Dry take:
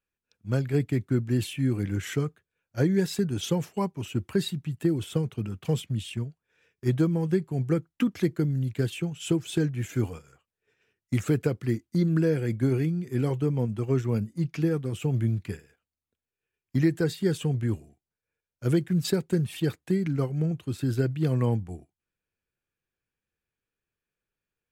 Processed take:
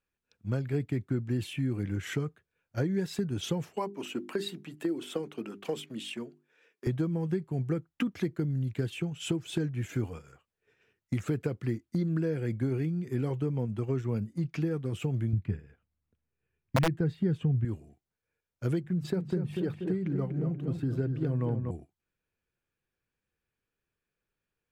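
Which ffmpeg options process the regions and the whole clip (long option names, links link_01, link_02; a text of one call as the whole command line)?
ffmpeg -i in.wav -filter_complex "[0:a]asettb=1/sr,asplit=3[link_01][link_02][link_03];[link_01]atrim=end=3.764[link_04];[link_02]atrim=start=3.76:end=6.87,asetpts=PTS-STARTPTS,afade=type=in:duration=0.004:curve=qsin,afade=type=out:start_time=3.106:duration=0.004:curve=qsin,highpass=frequency=250:width=0.5412,highpass=frequency=250:width=1.3066,bandreject=frequency=50:width_type=h:width=6,bandreject=frequency=100:width_type=h:width=6,bandreject=frequency=150:width_type=h:width=6,bandreject=frequency=200:width_type=h:width=6,bandreject=frequency=250:width_type=h:width=6,bandreject=frequency=300:width_type=h:width=6,bandreject=frequency=350:width_type=h:width=6,bandreject=frequency=400:width_type=h:width=6[link_05];[link_03]atrim=start=6.866[link_06];[link_04][link_05]acrossfade=duration=0.004:curve1=hsin:curve2=qsin[link_07];[link_07][link_06]acrossfade=duration=0.004:curve1=qsin:curve2=hsin,asettb=1/sr,asplit=3[link_08][link_09][link_10];[link_08]atrim=end=15.334[link_11];[link_09]atrim=start=15.33:end=17.65,asetpts=PTS-STARTPTS,afade=type=in:duration=0.004:curve=qsin,afade=type=out:start_time=2.316:duration=0.004:curve=qsin,bass=frequency=250:gain=11,treble=frequency=4000:gain=-13,aeval=exprs='(mod(2.66*val(0)+1,2)-1)/2.66':channel_layout=same[link_12];[link_10]atrim=start=17.646[link_13];[link_11][link_12]acrossfade=duration=0.004:curve1=hsin:curve2=qsin[link_14];[link_14][link_13]acrossfade=duration=0.004:curve1=qsin:curve2=hsin,asettb=1/sr,asplit=3[link_15][link_16][link_17];[link_15]atrim=end=18.804[link_18];[link_16]atrim=start=18.8:end=21.71,asetpts=PTS-STARTPTS,afade=type=in:duration=0.004:curve=qsin,afade=type=out:start_time=2.906:duration=0.004:curve=qsin,highshelf=frequency=2200:gain=-10,bandreject=frequency=50:width_type=h:width=6,bandreject=frequency=100:width_type=h:width=6,bandreject=frequency=150:width_type=h:width=6,bandreject=frequency=200:width_type=h:width=6,asplit=2[link_19][link_20];[link_20]adelay=241,lowpass=frequency=2700:poles=1,volume=-7dB,asplit=2[link_21][link_22];[link_22]adelay=241,lowpass=frequency=2700:poles=1,volume=0.5,asplit=2[link_23][link_24];[link_24]adelay=241,lowpass=frequency=2700:poles=1,volume=0.5,asplit=2[link_25][link_26];[link_26]adelay=241,lowpass=frequency=2700:poles=1,volume=0.5,asplit=2[link_27][link_28];[link_28]adelay=241,lowpass=frequency=2700:poles=1,volume=0.5,asplit=2[link_29][link_30];[link_30]adelay=241,lowpass=frequency=2700:poles=1,volume=0.5[link_31];[link_19][link_21][link_23][link_25][link_27][link_29][link_31]amix=inputs=7:normalize=0,atrim=end_sample=128331[link_32];[link_17]atrim=start=21.706[link_33];[link_18][link_32]acrossfade=duration=0.004:curve1=hsin:curve2=qsin[link_34];[link_34][link_33]acrossfade=duration=0.004:curve1=qsin:curve2=hsin,highshelf=frequency=4600:gain=-7.5,acompressor=threshold=-33dB:ratio=2.5,volume=2.5dB" out.wav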